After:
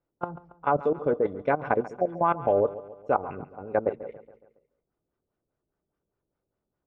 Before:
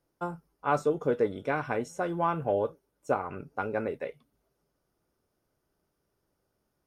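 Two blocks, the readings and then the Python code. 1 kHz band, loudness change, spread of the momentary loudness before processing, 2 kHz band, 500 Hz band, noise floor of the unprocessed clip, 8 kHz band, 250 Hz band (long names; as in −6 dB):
+4.0 dB, +4.0 dB, 10 LU, 0.0 dB, +4.0 dB, −79 dBFS, can't be measured, +1.5 dB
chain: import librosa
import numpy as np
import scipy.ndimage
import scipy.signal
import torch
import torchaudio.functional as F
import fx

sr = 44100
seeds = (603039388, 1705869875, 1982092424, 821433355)

p1 = fx.filter_lfo_lowpass(x, sr, shape='sine', hz=4.9, low_hz=430.0, high_hz=3100.0, q=0.96)
p2 = fx.high_shelf(p1, sr, hz=3400.0, db=-3.0)
p3 = fx.spec_erase(p2, sr, start_s=1.82, length_s=0.27, low_hz=830.0, high_hz=4300.0)
p4 = fx.level_steps(p3, sr, step_db=15)
p5 = fx.dynamic_eq(p4, sr, hz=700.0, q=0.98, threshold_db=-42.0, ratio=4.0, max_db=4)
p6 = p5 + fx.echo_feedback(p5, sr, ms=139, feedback_pct=51, wet_db=-16.5, dry=0)
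y = p6 * 10.0 ** (6.0 / 20.0)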